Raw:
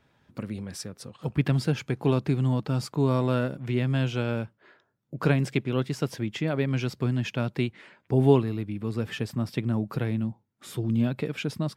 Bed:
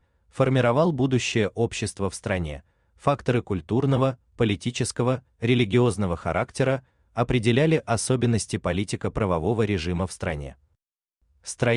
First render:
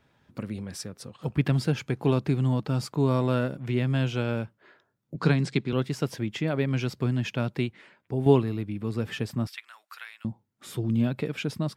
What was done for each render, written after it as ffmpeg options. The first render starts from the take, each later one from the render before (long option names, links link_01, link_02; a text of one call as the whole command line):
ffmpeg -i in.wav -filter_complex "[0:a]asettb=1/sr,asplit=3[link_01][link_02][link_03];[link_01]atrim=end=5.154[link_04];[link_02]atrim=start=5.15:end=5.73,asetpts=PTS-STARTPTS,afade=type=in:duration=0.004:curve=qsin,afade=type=out:start_time=0.576:duration=0.004:curve=qsin,highpass=110,equalizer=frequency=170:width_type=q:width=4:gain=5,equalizer=frequency=600:width_type=q:width=4:gain=-7,equalizer=frequency=2800:width_type=q:width=4:gain=-3,equalizer=frequency=4200:width_type=q:width=4:gain=9,lowpass=frequency=9100:width=0.5412,lowpass=frequency=9100:width=1.3066[link_05];[link_03]atrim=start=5.726[link_06];[link_04][link_05]acrossfade=duration=0.004:curve1=hsin:curve2=qsin[link_07];[link_07][link_06]acrossfade=duration=0.004:curve1=qsin:curve2=hsin,asettb=1/sr,asplit=3[link_08][link_09][link_10];[link_08]atrim=end=9.474[link_11];[link_09]atrim=start=9.47:end=10.25,asetpts=PTS-STARTPTS,afade=type=in:duration=0.004:curve=qsin,afade=type=out:start_time=0.776:duration=0.004:curve=qsin,highpass=frequency=1300:width=0.5412,highpass=frequency=1300:width=1.3066[link_12];[link_10]atrim=start=10.246[link_13];[link_11][link_12]acrossfade=duration=0.004:curve1=hsin:curve2=qsin[link_14];[link_14][link_13]acrossfade=duration=0.004:curve1=qsin:curve2=hsin,asplit=2[link_15][link_16];[link_15]atrim=end=8.26,asetpts=PTS-STARTPTS,afade=type=out:start_time=7.48:duration=0.78:silence=0.421697[link_17];[link_16]atrim=start=8.26,asetpts=PTS-STARTPTS,afade=type=in:duration=0.004:curve=hsin:silence=0.421697[link_18];[link_17][link_18]concat=n=2:v=0:a=1" out.wav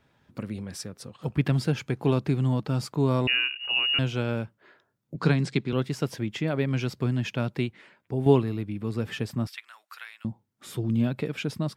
ffmpeg -i in.wav -filter_complex "[0:a]asettb=1/sr,asplit=3[link_01][link_02][link_03];[link_01]atrim=end=3.274[link_04];[link_02]atrim=start=3.27:end=3.99,asetpts=PTS-STARTPTS,afade=type=in:duration=0.004:curve=qsin,afade=type=out:start_time=0.716:duration=0.004:curve=qsin,lowpass=frequency=2600:width_type=q:width=0.5098,lowpass=frequency=2600:width_type=q:width=0.6013,lowpass=frequency=2600:width_type=q:width=0.9,lowpass=frequency=2600:width_type=q:width=2.563,afreqshift=-3000[link_05];[link_03]atrim=start=3.986[link_06];[link_04][link_05]acrossfade=duration=0.004:curve1=hsin:curve2=qsin[link_07];[link_07][link_06]acrossfade=duration=0.004:curve1=qsin:curve2=hsin" out.wav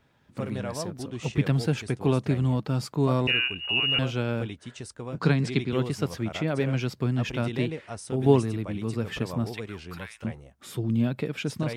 ffmpeg -i in.wav -i bed.wav -filter_complex "[1:a]volume=-14dB[link_01];[0:a][link_01]amix=inputs=2:normalize=0" out.wav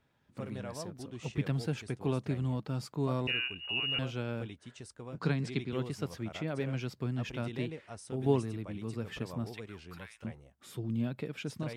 ffmpeg -i in.wav -af "volume=-8.5dB" out.wav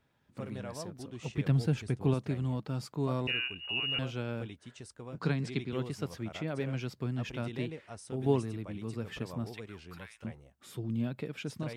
ffmpeg -i in.wav -filter_complex "[0:a]asettb=1/sr,asplit=3[link_01][link_02][link_03];[link_01]atrim=end=1.464[link_04];[link_02]atrim=start=1.46:end=2.14,asetpts=PTS-STARTPTS,afade=type=in:duration=0.004:curve=qsin,afade=type=out:start_time=0.676:duration=0.004:curve=qsin,lowshelf=frequency=220:gain=8.5[link_05];[link_03]atrim=start=2.136[link_06];[link_04][link_05]acrossfade=duration=0.004:curve1=hsin:curve2=qsin[link_07];[link_07][link_06]acrossfade=duration=0.004:curve1=qsin:curve2=hsin" out.wav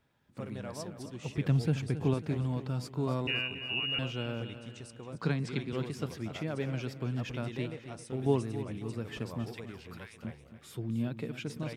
ffmpeg -i in.wav -af "aecho=1:1:272|544|816|1088:0.251|0.111|0.0486|0.0214" out.wav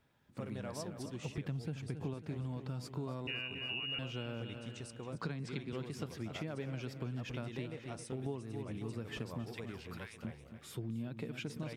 ffmpeg -i in.wav -af "acompressor=threshold=-37dB:ratio=6" out.wav